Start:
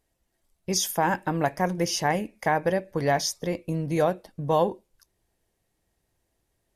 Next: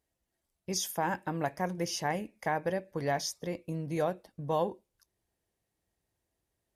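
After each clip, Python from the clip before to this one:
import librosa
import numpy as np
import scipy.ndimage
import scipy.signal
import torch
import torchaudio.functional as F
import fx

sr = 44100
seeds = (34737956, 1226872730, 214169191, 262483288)

y = scipy.signal.sosfilt(scipy.signal.butter(2, 41.0, 'highpass', fs=sr, output='sos'), x)
y = y * 10.0 ** (-7.5 / 20.0)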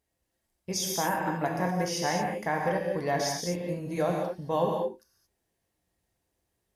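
y = fx.rev_gated(x, sr, seeds[0], gate_ms=250, shape='flat', drr_db=-0.5)
y = y * 10.0 ** (1.0 / 20.0)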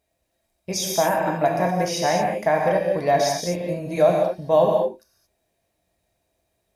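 y = fx.small_body(x, sr, hz=(640.0, 2400.0, 3800.0), ring_ms=40, db=13)
y = y * 10.0 ** (4.5 / 20.0)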